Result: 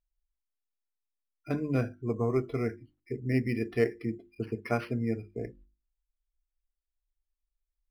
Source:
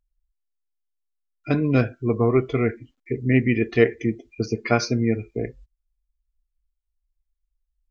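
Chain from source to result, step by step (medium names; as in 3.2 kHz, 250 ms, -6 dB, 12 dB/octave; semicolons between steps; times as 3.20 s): distance through air 110 m; hum notches 50/100/150/200/250/300/350 Hz; decimation joined by straight lines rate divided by 6×; trim -8.5 dB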